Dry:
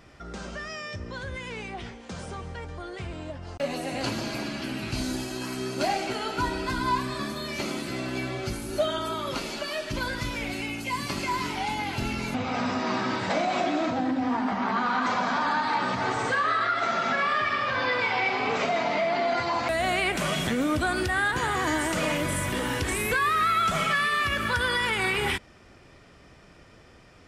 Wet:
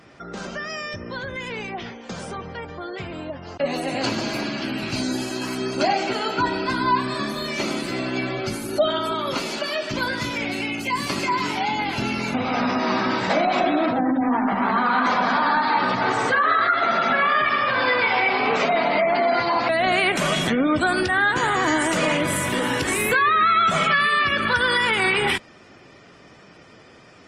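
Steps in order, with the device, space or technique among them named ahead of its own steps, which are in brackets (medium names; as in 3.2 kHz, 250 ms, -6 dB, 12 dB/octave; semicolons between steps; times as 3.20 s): noise-suppressed video call (high-pass 140 Hz 12 dB/octave; spectral gate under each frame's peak -30 dB strong; trim +6 dB; Opus 24 kbps 48 kHz)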